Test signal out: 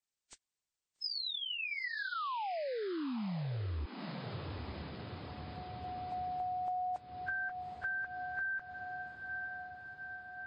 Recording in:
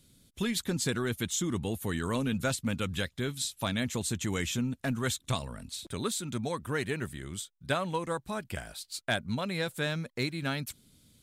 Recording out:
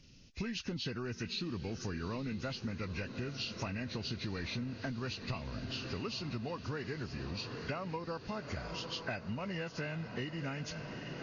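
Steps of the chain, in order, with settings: nonlinear frequency compression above 1400 Hz 1.5:1; low shelf 63 Hz +7 dB; on a send: diffused feedback echo 0.855 s, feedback 66%, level -13.5 dB; on the sum: compressor 6:1, threshold -37 dBFS; gain +1.5 dB; MP3 40 kbps 22050 Hz

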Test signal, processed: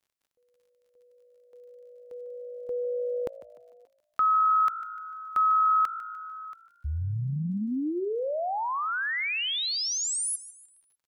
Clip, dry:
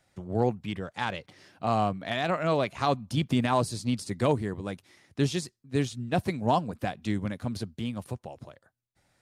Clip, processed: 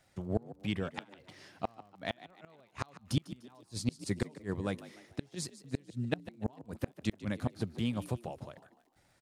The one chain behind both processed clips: flipped gate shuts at -18 dBFS, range -35 dB; frequency-shifting echo 0.149 s, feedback 41%, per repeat +55 Hz, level -16 dB; crackle 46/s -58 dBFS

